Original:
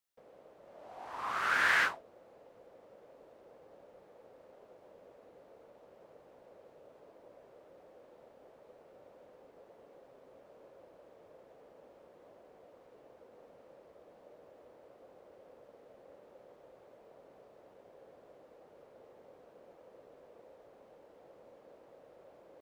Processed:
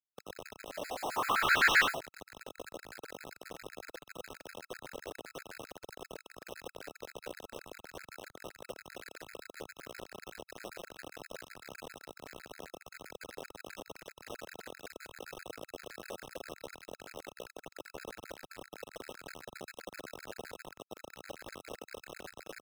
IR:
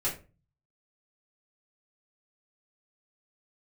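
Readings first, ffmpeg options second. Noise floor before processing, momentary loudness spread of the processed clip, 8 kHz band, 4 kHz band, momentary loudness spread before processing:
−61 dBFS, 10 LU, +9.0 dB, +7.0 dB, 23 LU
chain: -filter_complex "[0:a]lowpass=4600,equalizer=frequency=360:width_type=o:width=1.5:gain=6.5,bandreject=frequency=50:width_type=h:width=6,bandreject=frequency=100:width_type=h:width=6,bandreject=frequency=150:width_type=h:width=6,bandreject=frequency=200:width_type=h:width=6,aresample=16000,asoftclip=type=tanh:threshold=-24dB,aresample=44100,acrusher=bits=7:mix=0:aa=0.000001,acrossover=split=110|1700[link_01][link_02][link_03];[link_02]aeval=exprs='0.02*(abs(mod(val(0)/0.02+3,4)-2)-1)':channel_layout=same[link_04];[link_01][link_04][link_03]amix=inputs=3:normalize=0,afftfilt=real='re*gt(sin(2*PI*7.7*pts/sr)*(1-2*mod(floor(b*sr/1024/1300),2)),0)':imag='im*gt(sin(2*PI*7.7*pts/sr)*(1-2*mod(floor(b*sr/1024/1300),2)),0)':win_size=1024:overlap=0.75,volume=10dB"

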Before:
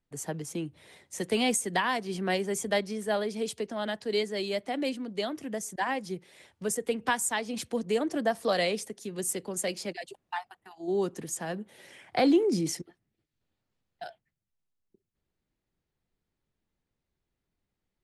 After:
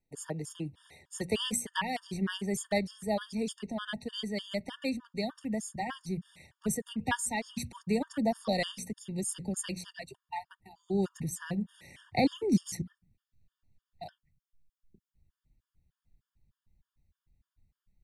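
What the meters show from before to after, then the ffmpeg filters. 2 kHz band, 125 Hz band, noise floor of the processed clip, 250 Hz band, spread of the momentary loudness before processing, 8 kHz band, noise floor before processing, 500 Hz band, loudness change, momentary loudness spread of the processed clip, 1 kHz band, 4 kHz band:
−5.0 dB, +3.0 dB, below −85 dBFS, −1.5 dB, 13 LU, −3.5 dB, −85 dBFS, −6.0 dB, −3.5 dB, 12 LU, −4.5 dB, −3.0 dB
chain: -af "bandreject=frequency=60:width_type=h:width=6,bandreject=frequency=120:width_type=h:width=6,bandreject=frequency=180:width_type=h:width=6,bandreject=frequency=240:width_type=h:width=6,asubboost=boost=10:cutoff=130,afftfilt=real='re*gt(sin(2*PI*3.3*pts/sr)*(1-2*mod(floor(b*sr/1024/920),2)),0)':imag='im*gt(sin(2*PI*3.3*pts/sr)*(1-2*mod(floor(b*sr/1024/920),2)),0)':win_size=1024:overlap=0.75"

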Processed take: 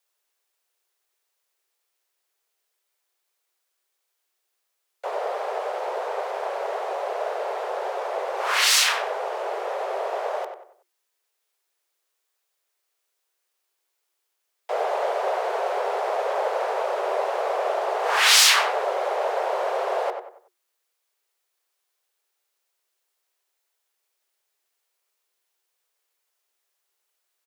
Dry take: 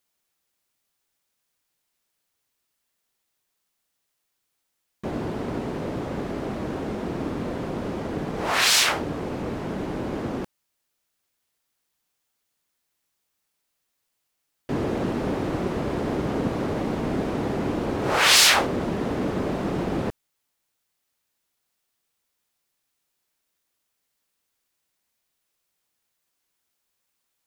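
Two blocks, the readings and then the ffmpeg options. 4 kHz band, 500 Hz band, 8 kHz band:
+0.5 dB, +3.5 dB, +1.0 dB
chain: -filter_complex "[0:a]asplit=2[link_01][link_02];[link_02]adelay=94,lowpass=frequency=2000:poles=1,volume=-6.5dB,asplit=2[link_03][link_04];[link_04]adelay=94,lowpass=frequency=2000:poles=1,volume=0.37,asplit=2[link_05][link_06];[link_06]adelay=94,lowpass=frequency=2000:poles=1,volume=0.37,asplit=2[link_07][link_08];[link_08]adelay=94,lowpass=frequency=2000:poles=1,volume=0.37[link_09];[link_01][link_03][link_05][link_07][link_09]amix=inputs=5:normalize=0,afreqshift=350"

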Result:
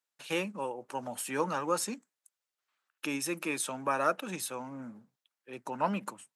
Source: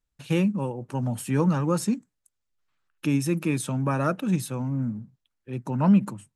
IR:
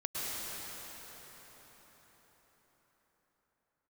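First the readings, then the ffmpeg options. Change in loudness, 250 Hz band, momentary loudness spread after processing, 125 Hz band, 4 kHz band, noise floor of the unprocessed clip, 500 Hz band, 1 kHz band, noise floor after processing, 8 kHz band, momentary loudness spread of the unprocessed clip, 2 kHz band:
−8.0 dB, −14.5 dB, 13 LU, −21.0 dB, 0.0 dB, −81 dBFS, −4.0 dB, −0.5 dB, below −85 dBFS, 0.0 dB, 11 LU, 0.0 dB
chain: -af "highpass=540"

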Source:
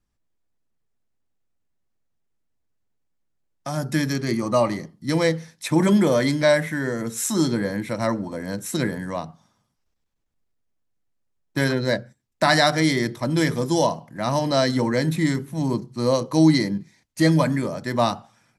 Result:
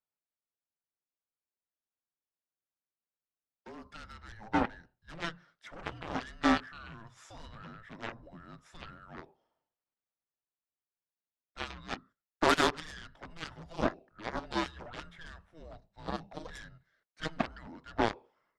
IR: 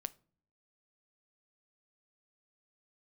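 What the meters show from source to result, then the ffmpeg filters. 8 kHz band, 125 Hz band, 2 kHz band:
−18.5 dB, −22.5 dB, −11.5 dB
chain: -filter_complex "[0:a]asplit=2[link_01][link_02];[link_02]asoftclip=type=tanh:threshold=-17.5dB,volume=-5.5dB[link_03];[link_01][link_03]amix=inputs=2:normalize=0,highpass=640,lowpass=2400,afreqshift=-330,aeval=exprs='0.531*(cos(1*acos(clip(val(0)/0.531,-1,1)))-cos(1*PI/2))+0.0188*(cos(5*acos(clip(val(0)/0.531,-1,1)))-cos(5*PI/2))+0.119*(cos(7*acos(clip(val(0)/0.531,-1,1)))-cos(7*PI/2))':channel_layout=same,volume=-6.5dB"

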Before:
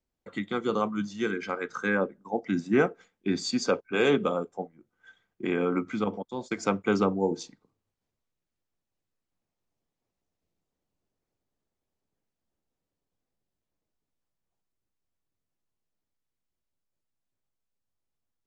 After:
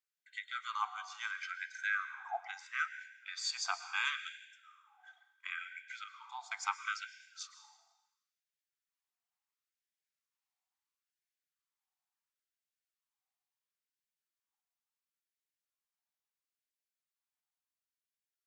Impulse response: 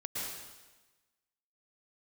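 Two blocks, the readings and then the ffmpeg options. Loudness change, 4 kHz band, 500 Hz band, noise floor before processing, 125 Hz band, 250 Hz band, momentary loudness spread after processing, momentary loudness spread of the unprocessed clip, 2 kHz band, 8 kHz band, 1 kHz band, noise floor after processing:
−11.0 dB, −3.5 dB, −31.0 dB, below −85 dBFS, below −40 dB, below −40 dB, 13 LU, 12 LU, −3.5 dB, −3.5 dB, −7.0 dB, below −85 dBFS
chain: -filter_complex "[0:a]asplit=2[link_01][link_02];[1:a]atrim=start_sample=2205[link_03];[link_02][link_03]afir=irnorm=-1:irlink=0,volume=-11.5dB[link_04];[link_01][link_04]amix=inputs=2:normalize=0,afftfilt=real='re*gte(b*sr/1024,670*pow(1500/670,0.5+0.5*sin(2*PI*0.73*pts/sr)))':imag='im*gte(b*sr/1024,670*pow(1500/670,0.5+0.5*sin(2*PI*0.73*pts/sr)))':win_size=1024:overlap=0.75,volume=-5dB"

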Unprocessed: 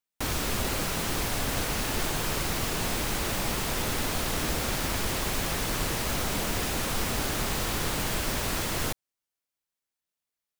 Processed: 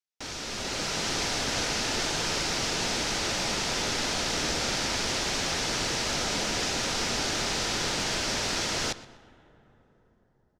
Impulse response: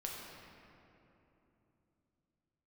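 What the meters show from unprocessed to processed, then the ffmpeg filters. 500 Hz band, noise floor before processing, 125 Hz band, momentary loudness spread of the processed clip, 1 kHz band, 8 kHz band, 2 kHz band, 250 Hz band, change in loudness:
0.0 dB, below −85 dBFS, −5.0 dB, 3 LU, 0.0 dB, +2.0 dB, +2.0 dB, −1.5 dB, +1.0 dB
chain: -filter_complex "[0:a]lowshelf=frequency=140:gain=-10.5,bandreject=frequency=1100:width=11,dynaudnorm=framelen=110:gausssize=13:maxgain=8.5dB,lowpass=frequency=5700:width_type=q:width=2,asplit=2[link_01][link_02];[link_02]adelay=121,lowpass=frequency=4400:poles=1,volume=-17dB,asplit=2[link_03][link_04];[link_04]adelay=121,lowpass=frequency=4400:poles=1,volume=0.36,asplit=2[link_05][link_06];[link_06]adelay=121,lowpass=frequency=4400:poles=1,volume=0.36[link_07];[link_01][link_03][link_05][link_07]amix=inputs=4:normalize=0,asplit=2[link_08][link_09];[1:a]atrim=start_sample=2205,asetrate=30429,aresample=44100[link_10];[link_09][link_10]afir=irnorm=-1:irlink=0,volume=-19.5dB[link_11];[link_08][link_11]amix=inputs=2:normalize=0,volume=-8dB"

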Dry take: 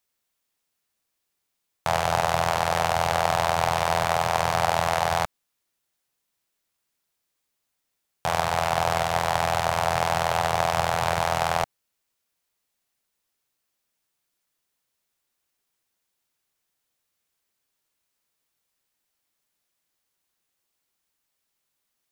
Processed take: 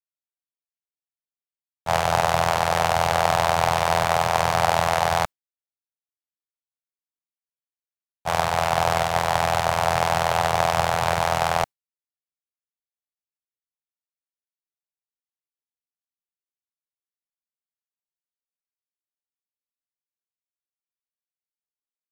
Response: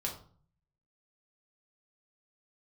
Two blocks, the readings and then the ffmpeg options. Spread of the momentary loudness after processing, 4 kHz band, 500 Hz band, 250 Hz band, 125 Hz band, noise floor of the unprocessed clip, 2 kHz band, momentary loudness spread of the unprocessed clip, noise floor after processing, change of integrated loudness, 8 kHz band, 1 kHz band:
5 LU, +2.0 dB, +2.5 dB, +2.5 dB, +2.5 dB, −79 dBFS, +2.5 dB, 4 LU, below −85 dBFS, +2.5 dB, +2.0 dB, +2.5 dB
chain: -af "agate=range=-33dB:threshold=-22dB:ratio=3:detection=peak,volume=3dB"

